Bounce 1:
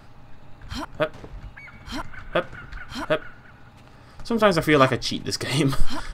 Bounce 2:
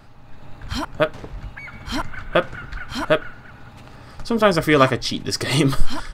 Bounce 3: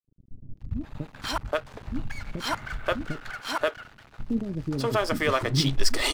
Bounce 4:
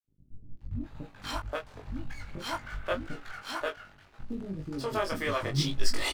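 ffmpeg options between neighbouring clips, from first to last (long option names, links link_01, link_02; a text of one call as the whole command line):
ffmpeg -i in.wav -af "dynaudnorm=framelen=230:gausssize=3:maxgain=6.5dB" out.wav
ffmpeg -i in.wav -filter_complex "[0:a]alimiter=limit=-11.5dB:level=0:latency=1:release=216,aeval=exprs='sgn(val(0))*max(abs(val(0))-0.0112,0)':channel_layout=same,acrossover=split=330[link_01][link_02];[link_02]adelay=530[link_03];[link_01][link_03]amix=inputs=2:normalize=0" out.wav
ffmpeg -i in.wav -filter_complex "[0:a]flanger=delay=17:depth=4.1:speed=1.9,asplit=2[link_01][link_02];[link_02]adelay=21,volume=-5dB[link_03];[link_01][link_03]amix=inputs=2:normalize=0,volume=-4dB" out.wav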